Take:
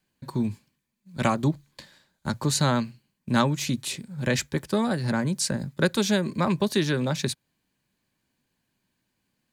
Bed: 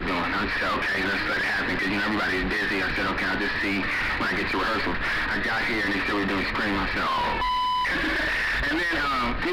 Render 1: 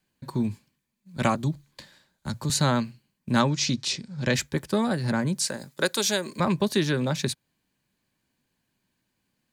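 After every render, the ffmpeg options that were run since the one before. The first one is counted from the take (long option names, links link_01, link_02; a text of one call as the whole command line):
ffmpeg -i in.wav -filter_complex "[0:a]asettb=1/sr,asplit=3[link_01][link_02][link_03];[link_01]atrim=end=1.354[link_04];[link_02]atrim=start=1.35:end=2.5,asetpts=PTS-STARTPTS,afade=type=in:duration=0.004:curve=qsin,afade=type=out:start_time=1.146:duration=0.004:curve=qsin,acrossover=split=190|3000[link_05][link_06][link_07];[link_06]acompressor=threshold=-39dB:ratio=2:attack=3.2:release=140:knee=2.83:detection=peak[link_08];[link_05][link_08][link_07]amix=inputs=3:normalize=0[link_09];[link_03]atrim=start=2.496[link_10];[link_04][link_09]acrossfade=duration=0.004:curve1=hsin:curve2=qsin[link_11];[link_11][link_10]acrossfade=duration=0.004:curve1=qsin:curve2=hsin,asettb=1/sr,asplit=3[link_12][link_13][link_14];[link_12]atrim=end=3.464[link_15];[link_13]atrim=start=3.46:end=4.34,asetpts=PTS-STARTPTS,afade=type=in:duration=0.004:curve=qsin,afade=type=out:start_time=0.876:duration=0.004:curve=qsin,lowpass=frequency=5400:width_type=q:width=2.9[link_16];[link_14]atrim=start=4.336[link_17];[link_15][link_16]acrossfade=duration=0.004:curve1=hsin:curve2=qsin[link_18];[link_18][link_17]acrossfade=duration=0.004:curve1=qsin:curve2=hsin,asettb=1/sr,asplit=3[link_19][link_20][link_21];[link_19]atrim=end=5.484[link_22];[link_20]atrim=start=5.48:end=6.4,asetpts=PTS-STARTPTS,afade=type=in:duration=0.004:curve=qsin,afade=type=out:start_time=0.916:duration=0.004:curve=qsin,bass=frequency=250:gain=-15,treble=frequency=4000:gain=7[link_23];[link_21]atrim=start=6.396[link_24];[link_22][link_23]acrossfade=duration=0.004:curve1=hsin:curve2=qsin[link_25];[link_25][link_24]acrossfade=duration=0.004:curve1=qsin:curve2=hsin" out.wav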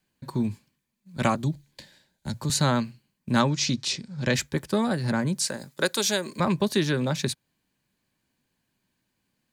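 ffmpeg -i in.wav -filter_complex "[0:a]asettb=1/sr,asplit=3[link_01][link_02][link_03];[link_01]atrim=end=1.454[link_04];[link_02]atrim=start=1.45:end=2.37,asetpts=PTS-STARTPTS,afade=type=in:duration=0.004:curve=qsin,afade=type=out:start_time=0.916:duration=0.004:curve=qsin,equalizer=frequency=1200:width_type=o:width=0.4:gain=-12[link_05];[link_03]atrim=start=2.366[link_06];[link_04][link_05]acrossfade=duration=0.004:curve1=hsin:curve2=qsin[link_07];[link_07][link_06]acrossfade=duration=0.004:curve1=qsin:curve2=hsin" out.wav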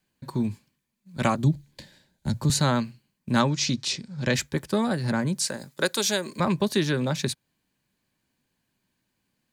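ffmpeg -i in.wav -filter_complex "[0:a]asettb=1/sr,asplit=3[link_01][link_02][link_03];[link_01]atrim=end=1.384[link_04];[link_02]atrim=start=1.38:end=2.6,asetpts=PTS-STARTPTS,afade=type=in:duration=0.004:curve=qsin,afade=type=out:start_time=1.216:duration=0.004:curve=qsin,lowshelf=frequency=410:gain=6.5[link_05];[link_03]atrim=start=2.596[link_06];[link_04][link_05]acrossfade=duration=0.004:curve1=hsin:curve2=qsin[link_07];[link_07][link_06]acrossfade=duration=0.004:curve1=qsin:curve2=hsin" out.wav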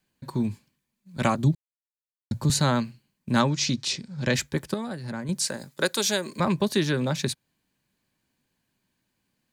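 ffmpeg -i in.wav -filter_complex "[0:a]asplit=5[link_01][link_02][link_03][link_04][link_05];[link_01]atrim=end=1.55,asetpts=PTS-STARTPTS,afade=type=out:start_time=1.546:duration=0.004:curve=hsin[link_06];[link_02]atrim=start=1.55:end=2.31,asetpts=PTS-STARTPTS,volume=0[link_07];[link_03]atrim=start=2.31:end=4.742,asetpts=PTS-STARTPTS,afade=type=in:duration=0.004:curve=hsin[link_08];[link_04]atrim=start=4.738:end=5.292,asetpts=PTS-STARTPTS,volume=-8dB[link_09];[link_05]atrim=start=5.288[link_10];[link_06][link_07][link_08]concat=n=3:v=0:a=1[link_11];[link_11][link_09]acrossfade=duration=0.004:curve1=hsin:curve2=hsin[link_12];[link_12][link_10]acrossfade=duration=0.004:curve1=hsin:curve2=hsin" out.wav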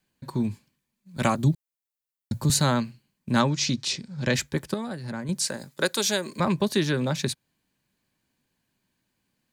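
ffmpeg -i in.wav -filter_complex "[0:a]asettb=1/sr,asplit=3[link_01][link_02][link_03];[link_01]atrim=end=1.164[link_04];[link_02]atrim=start=1.16:end=2.74,asetpts=PTS-STARTPTS,afade=type=in:duration=0.004:curve=qsin,afade=type=out:start_time=1.576:duration=0.004:curve=qsin,highshelf=frequency=10000:gain=9[link_05];[link_03]atrim=start=2.736[link_06];[link_04][link_05]acrossfade=duration=0.004:curve1=hsin:curve2=qsin[link_07];[link_07][link_06]acrossfade=duration=0.004:curve1=qsin:curve2=hsin" out.wav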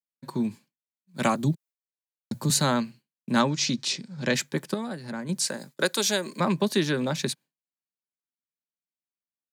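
ffmpeg -i in.wav -af "agate=range=-33dB:threshold=-41dB:ratio=3:detection=peak,highpass=frequency=150:width=0.5412,highpass=frequency=150:width=1.3066" out.wav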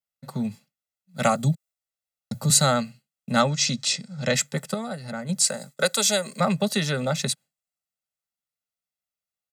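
ffmpeg -i in.wav -af "adynamicequalizer=threshold=0.00398:dfrequency=8000:dqfactor=2.9:tfrequency=8000:tqfactor=2.9:attack=5:release=100:ratio=0.375:range=4:mode=boostabove:tftype=bell,aecho=1:1:1.5:0.97" out.wav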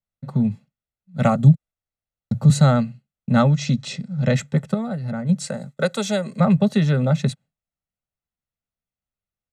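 ffmpeg -i in.wav -af "aemphasis=mode=reproduction:type=riaa,bandreject=frequency=4900:width=7.7" out.wav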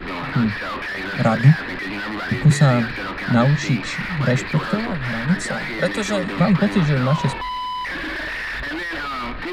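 ffmpeg -i in.wav -i bed.wav -filter_complex "[1:a]volume=-2dB[link_01];[0:a][link_01]amix=inputs=2:normalize=0" out.wav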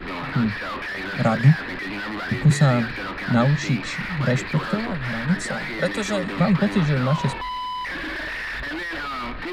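ffmpeg -i in.wav -af "volume=-2.5dB" out.wav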